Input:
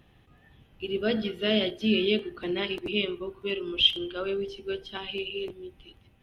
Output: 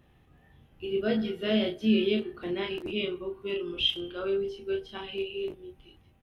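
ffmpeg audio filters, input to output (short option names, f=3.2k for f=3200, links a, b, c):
-filter_complex "[0:a]equalizer=f=3.5k:t=o:w=1.6:g=-4.5,asplit=2[a][b];[b]aecho=0:1:23|36:0.473|0.562[c];[a][c]amix=inputs=2:normalize=0,volume=-3dB"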